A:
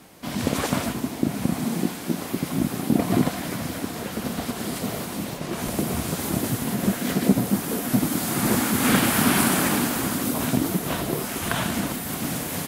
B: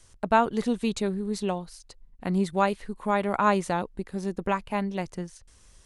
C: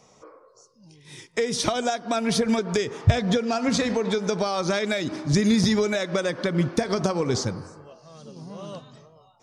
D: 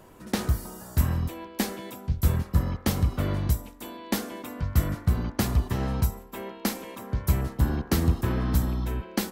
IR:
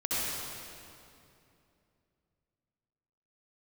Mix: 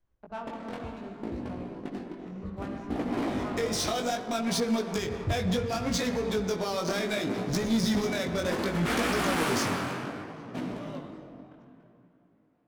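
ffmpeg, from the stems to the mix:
-filter_complex "[0:a]agate=range=0.00631:threshold=0.112:ratio=16:detection=peak,alimiter=limit=0.282:level=0:latency=1:release=158,bass=f=250:g=-14,treble=f=4000:g=-4,volume=0.891,asplit=2[s0][s1];[s1]volume=0.631[s2];[1:a]volume=0.126,asplit=2[s3][s4];[s4]volume=0.531[s5];[2:a]highshelf=f=6400:g=10.5,adelay=2200,volume=0.794,asplit=2[s6][s7];[s7]volume=0.133[s8];[3:a]acompressor=threshold=0.0708:ratio=6,adelay=350,volume=0.282[s9];[4:a]atrim=start_sample=2205[s10];[s2][s5][s8]amix=inputs=3:normalize=0[s11];[s11][s10]afir=irnorm=-1:irlink=0[s12];[s0][s3][s6][s9][s12]amix=inputs=5:normalize=0,adynamicsmooth=sensitivity=7:basefreq=1800,asoftclip=type=tanh:threshold=0.112,flanger=delay=16.5:depth=6.3:speed=0.66"

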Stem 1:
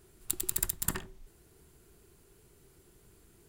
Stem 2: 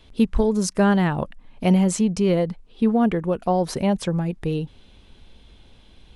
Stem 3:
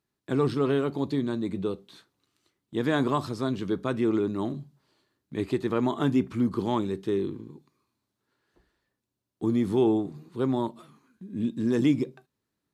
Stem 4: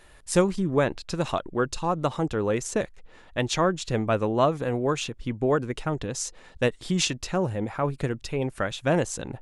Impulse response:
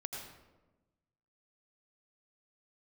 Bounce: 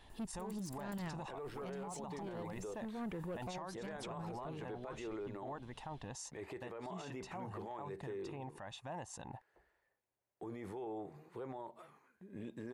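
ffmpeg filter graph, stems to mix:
-filter_complex "[0:a]acompressor=threshold=0.01:ratio=3,adelay=100,volume=0.794[s0];[1:a]asoftclip=type=tanh:threshold=0.112,volume=0.335[s1];[2:a]equalizer=f=125:t=o:w=1:g=-3,equalizer=f=250:t=o:w=1:g=-10,equalizer=f=500:t=o:w=1:g=7,equalizer=f=1000:t=o:w=1:g=-6,equalizer=f=2000:t=o:w=1:g=9,equalizer=f=4000:t=o:w=1:g=-7,adelay=1000,volume=0.398[s2];[3:a]highpass=56,aecho=1:1:1.1:0.48,volume=0.158[s3];[s2][s3]amix=inputs=2:normalize=0,equalizer=f=840:t=o:w=1:g=12.5,acompressor=threshold=0.0112:ratio=2.5,volume=1[s4];[s0][s1]amix=inputs=2:normalize=0,tremolo=f=1.2:d=0.76,alimiter=level_in=4.47:limit=0.0631:level=0:latency=1:release=13,volume=0.224,volume=1[s5];[s4][s5]amix=inputs=2:normalize=0,alimiter=level_in=4.47:limit=0.0631:level=0:latency=1:release=18,volume=0.224"

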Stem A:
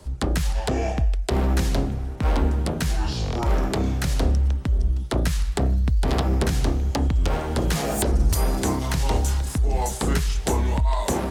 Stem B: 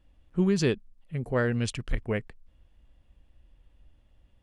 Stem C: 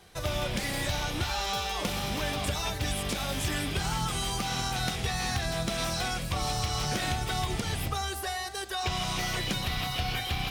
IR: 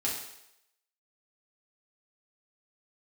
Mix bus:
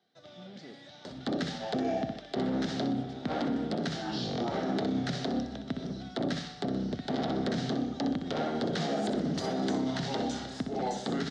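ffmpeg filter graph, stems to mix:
-filter_complex "[0:a]acompressor=mode=upward:threshold=0.0447:ratio=2.5,adelay=1050,volume=0.631,asplit=2[s0][s1];[s1]volume=0.398[s2];[1:a]asoftclip=type=tanh:threshold=0.0398,volume=0.112[s3];[2:a]volume=0.112[s4];[s2]aecho=0:1:62|124|186|248|310:1|0.35|0.122|0.0429|0.015[s5];[s0][s3][s4][s5]amix=inputs=4:normalize=0,aeval=exprs='0.141*(abs(mod(val(0)/0.141+3,4)-2)-1)':c=same,highpass=f=150:w=0.5412,highpass=f=150:w=1.3066,equalizer=f=250:t=q:w=4:g=6,equalizer=f=700:t=q:w=4:g=5,equalizer=f=1000:t=q:w=4:g=-10,equalizer=f=2500:t=q:w=4:g=-9,equalizer=f=3700:t=q:w=4:g=4,lowpass=f=5200:w=0.5412,lowpass=f=5200:w=1.3066,alimiter=limit=0.0794:level=0:latency=1:release=61"

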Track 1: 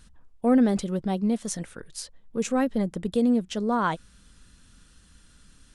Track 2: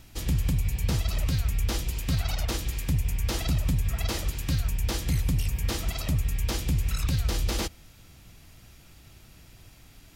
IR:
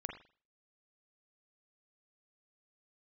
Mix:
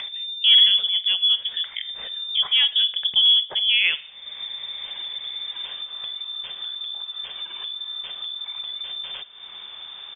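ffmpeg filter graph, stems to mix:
-filter_complex "[0:a]highshelf=f=6100:g=-10,volume=1.33,asplit=3[s0][s1][s2];[s1]volume=0.473[s3];[1:a]acompressor=threshold=0.00794:ratio=2,adelay=1550,volume=0.282,asplit=2[s4][s5];[s5]volume=0.237[s6];[s2]apad=whole_len=520600[s7];[s4][s7]sidechaincompress=threshold=0.02:ratio=8:attack=16:release=1400[s8];[2:a]atrim=start_sample=2205[s9];[s3][s6]amix=inputs=2:normalize=0[s10];[s10][s9]afir=irnorm=-1:irlink=0[s11];[s0][s8][s11]amix=inputs=3:normalize=0,lowpass=f=3100:t=q:w=0.5098,lowpass=f=3100:t=q:w=0.6013,lowpass=f=3100:t=q:w=0.9,lowpass=f=3100:t=q:w=2.563,afreqshift=-3600,acompressor=mode=upward:threshold=0.1:ratio=2.5,equalizer=f=290:t=o:w=0.28:g=-14"

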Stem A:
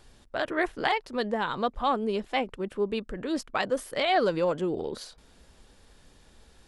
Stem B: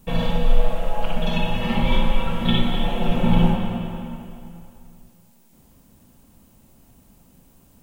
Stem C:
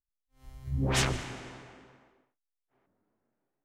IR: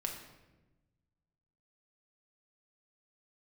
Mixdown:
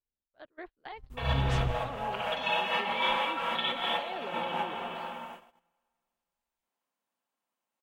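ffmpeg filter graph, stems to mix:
-filter_complex "[0:a]highshelf=f=5100:t=q:w=3:g=-7,volume=0.15,asplit=2[s0][s1];[1:a]highpass=980,acontrast=43,adelay=1100,volume=1.26[s2];[2:a]asubboost=boost=8.5:cutoff=170,adelay=550,volume=0.531[s3];[s1]apad=whole_len=393466[s4];[s2][s4]sidechaincompress=threshold=0.00398:ratio=8:attack=33:release=188[s5];[s0][s5][s3]amix=inputs=3:normalize=0,agate=range=0.0501:threshold=0.00708:ratio=16:detection=peak,lowpass=f=1700:p=1"

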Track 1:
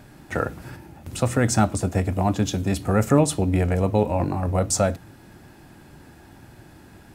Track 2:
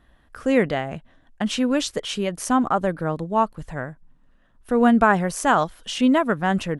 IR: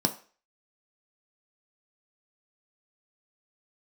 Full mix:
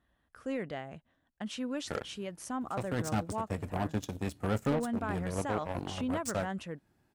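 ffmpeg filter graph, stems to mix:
-filter_complex "[0:a]aeval=exprs='0.596*(cos(1*acos(clip(val(0)/0.596,-1,1)))-cos(1*PI/2))+0.0531*(cos(3*acos(clip(val(0)/0.596,-1,1)))-cos(3*PI/2))+0.0266*(cos(5*acos(clip(val(0)/0.596,-1,1)))-cos(5*PI/2))+0.075*(cos(7*acos(clip(val(0)/0.596,-1,1)))-cos(7*PI/2))':c=same,adelay=1550,volume=0.794[s0];[1:a]highpass=54,alimiter=limit=0.282:level=0:latency=1:release=105,volume=0.188,asplit=2[s1][s2];[s2]apad=whole_len=383477[s3];[s0][s3]sidechaincompress=threshold=0.0158:ratio=8:attack=7.2:release=330[s4];[s4][s1]amix=inputs=2:normalize=0,asoftclip=type=tanh:threshold=0.075"

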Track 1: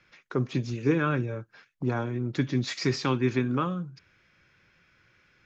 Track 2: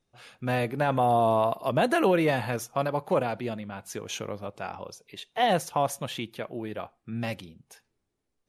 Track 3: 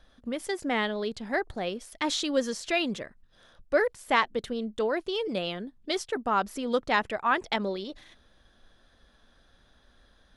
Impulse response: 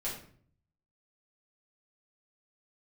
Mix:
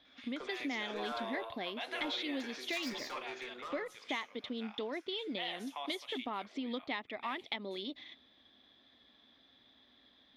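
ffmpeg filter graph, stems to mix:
-filter_complex "[0:a]acompressor=threshold=0.0398:ratio=2,highpass=f=490:w=0.5412,highpass=f=490:w=1.3066,asoftclip=type=tanh:threshold=0.0158,adelay=50,volume=0.447,asplit=2[s0][s1];[s1]volume=0.447[s2];[1:a]highpass=1200,volume=0.355,asplit=2[s3][s4];[s4]volume=0.224[s5];[2:a]volume=0.631[s6];[s3][s6]amix=inputs=2:normalize=0,highpass=150,equalizer=f=170:t=q:w=4:g=-7,equalizer=f=270:t=q:w=4:g=8,equalizer=f=510:t=q:w=4:g=-5,equalizer=f=1500:t=q:w=4:g=-10,equalizer=f=2100:t=q:w=4:g=9,equalizer=f=3500:t=q:w=4:g=10,lowpass=f=4800:w=0.5412,lowpass=f=4800:w=1.3066,acompressor=threshold=0.0141:ratio=4,volume=1[s7];[3:a]atrim=start_sample=2205[s8];[s2][s5]amix=inputs=2:normalize=0[s9];[s9][s8]afir=irnorm=-1:irlink=0[s10];[s0][s7][s10]amix=inputs=3:normalize=0"

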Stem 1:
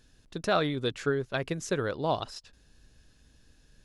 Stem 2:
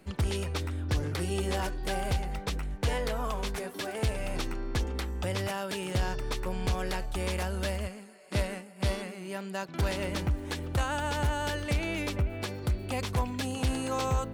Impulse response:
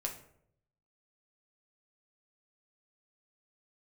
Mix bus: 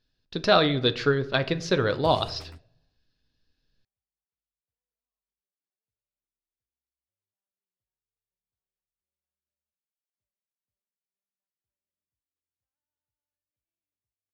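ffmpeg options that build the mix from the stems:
-filter_complex "[0:a]highshelf=f=6200:t=q:w=3:g=-11.5,agate=range=0.0891:threshold=0.00316:ratio=16:detection=peak,volume=1.19,asplit=3[s0][s1][s2];[s1]volume=0.668[s3];[1:a]equalizer=f=110:t=o:w=0.24:g=9.5,adelay=1850,volume=0.237[s4];[s2]apad=whole_len=713892[s5];[s4][s5]sidechaingate=range=0.00112:threshold=0.00141:ratio=16:detection=peak[s6];[2:a]atrim=start_sample=2205[s7];[s3][s7]afir=irnorm=-1:irlink=0[s8];[s0][s6][s8]amix=inputs=3:normalize=0"

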